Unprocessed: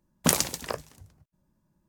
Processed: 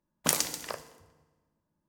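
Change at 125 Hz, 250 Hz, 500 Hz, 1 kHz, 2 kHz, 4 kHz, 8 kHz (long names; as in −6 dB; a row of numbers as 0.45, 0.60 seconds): −10.5, −9.5, −5.5, −4.0, −3.0, −2.5, −2.5 decibels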